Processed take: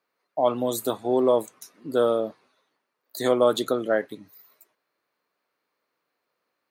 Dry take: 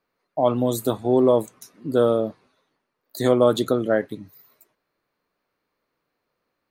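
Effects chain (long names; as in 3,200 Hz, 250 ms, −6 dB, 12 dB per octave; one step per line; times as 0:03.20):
high-pass filter 450 Hz 6 dB per octave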